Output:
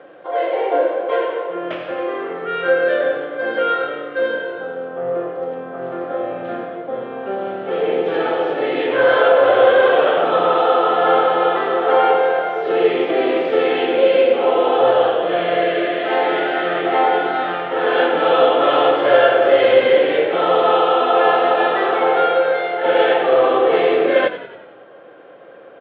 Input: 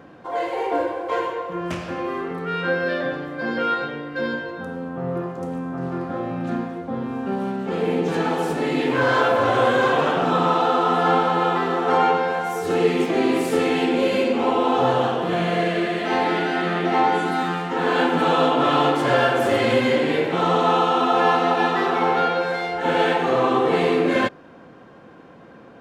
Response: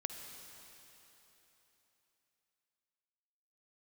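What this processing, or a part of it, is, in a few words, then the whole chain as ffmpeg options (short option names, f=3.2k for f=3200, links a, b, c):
frequency-shifting delay pedal into a guitar cabinet: -filter_complex "[0:a]asplit=7[a][b][c][d][e][f][g];[b]adelay=91,afreqshift=-39,volume=-12dB[h];[c]adelay=182,afreqshift=-78,volume=-16.9dB[i];[d]adelay=273,afreqshift=-117,volume=-21.8dB[j];[e]adelay=364,afreqshift=-156,volume=-26.6dB[k];[f]adelay=455,afreqshift=-195,volume=-31.5dB[l];[g]adelay=546,afreqshift=-234,volume=-36.4dB[m];[a][h][i][j][k][l][m]amix=inputs=7:normalize=0,highpass=85,equalizer=f=120:t=q:w=4:g=5,equalizer=f=240:t=q:w=4:g=-9,equalizer=f=560:t=q:w=4:g=7,equalizer=f=970:t=q:w=4:g=-8,equalizer=f=3.3k:t=q:w=4:g=9,lowpass=f=4.4k:w=0.5412,lowpass=f=4.4k:w=1.3066,acrossover=split=290 2600:gain=0.0794 1 0.141[n][o][p];[n][o][p]amix=inputs=3:normalize=0,volume=4.5dB"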